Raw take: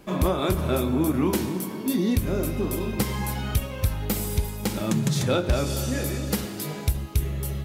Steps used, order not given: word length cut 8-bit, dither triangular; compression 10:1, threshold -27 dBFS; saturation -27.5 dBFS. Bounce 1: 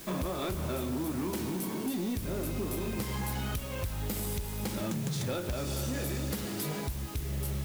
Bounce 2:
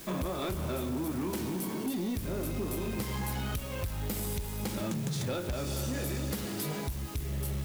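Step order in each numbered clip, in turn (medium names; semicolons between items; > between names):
compression > saturation > word length cut; compression > word length cut > saturation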